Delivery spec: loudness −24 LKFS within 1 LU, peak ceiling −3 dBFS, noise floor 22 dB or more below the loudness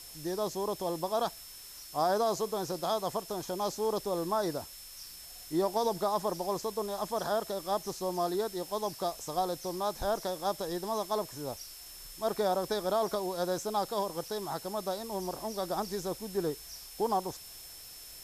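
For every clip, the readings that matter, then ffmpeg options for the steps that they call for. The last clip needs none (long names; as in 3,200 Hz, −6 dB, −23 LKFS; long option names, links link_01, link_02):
interfering tone 5,300 Hz; level of the tone −51 dBFS; background noise floor −48 dBFS; target noise floor −56 dBFS; integrated loudness −33.5 LKFS; sample peak −17.5 dBFS; target loudness −24.0 LKFS
→ -af "bandreject=frequency=5300:width=30"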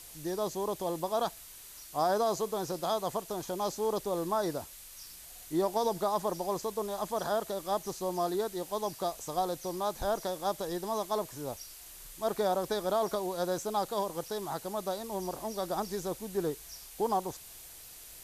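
interfering tone none found; background noise floor −50 dBFS; target noise floor −56 dBFS
→ -af "afftdn=noise_reduction=6:noise_floor=-50"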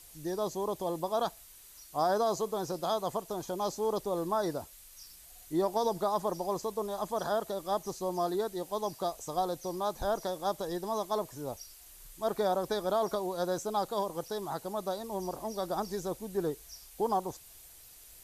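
background noise floor −54 dBFS; target noise floor −56 dBFS
→ -af "afftdn=noise_reduction=6:noise_floor=-54"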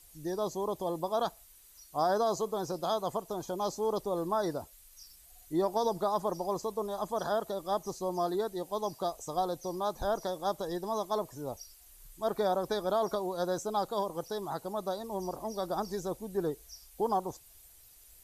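background noise floor −57 dBFS; integrated loudness −33.5 LKFS; sample peak −18.0 dBFS; target loudness −24.0 LKFS
→ -af "volume=9.5dB"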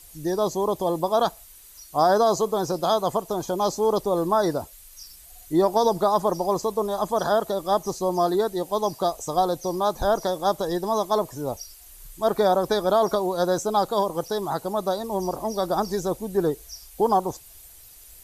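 integrated loudness −24.0 LKFS; sample peak −8.5 dBFS; background noise floor −48 dBFS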